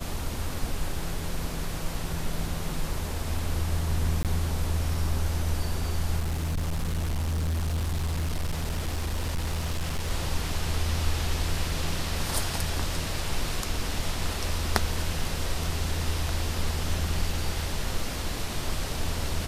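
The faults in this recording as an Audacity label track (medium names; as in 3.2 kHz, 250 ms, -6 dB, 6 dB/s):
4.230000	4.250000	dropout 18 ms
6.190000	10.110000	clipped -24.5 dBFS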